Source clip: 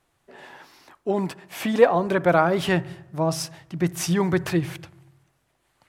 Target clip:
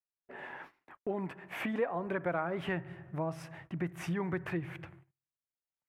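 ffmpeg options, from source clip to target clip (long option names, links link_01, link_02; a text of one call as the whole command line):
ffmpeg -i in.wav -af "agate=range=-38dB:threshold=-49dB:ratio=16:detection=peak,highshelf=frequency=3200:width_type=q:width=1.5:gain=-13.5,acompressor=threshold=-35dB:ratio=2.5,volume=-2dB" out.wav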